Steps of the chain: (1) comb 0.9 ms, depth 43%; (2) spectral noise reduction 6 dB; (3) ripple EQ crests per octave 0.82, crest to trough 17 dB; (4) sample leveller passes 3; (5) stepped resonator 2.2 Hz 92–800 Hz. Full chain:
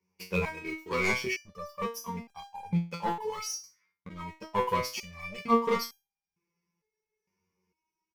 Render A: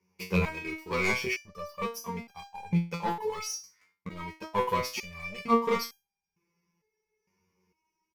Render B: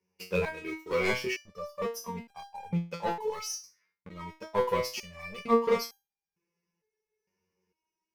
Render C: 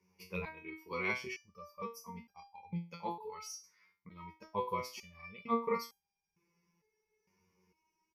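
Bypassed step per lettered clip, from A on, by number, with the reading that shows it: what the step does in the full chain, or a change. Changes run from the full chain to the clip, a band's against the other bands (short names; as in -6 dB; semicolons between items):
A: 2, 125 Hz band +2.0 dB; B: 1, 500 Hz band +5.0 dB; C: 4, momentary loudness spread change +1 LU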